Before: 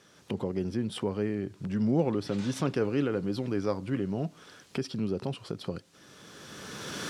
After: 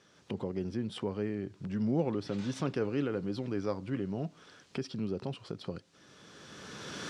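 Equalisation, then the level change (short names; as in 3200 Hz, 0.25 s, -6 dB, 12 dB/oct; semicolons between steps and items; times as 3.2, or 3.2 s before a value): LPF 7400 Hz 12 dB/oct; -4.0 dB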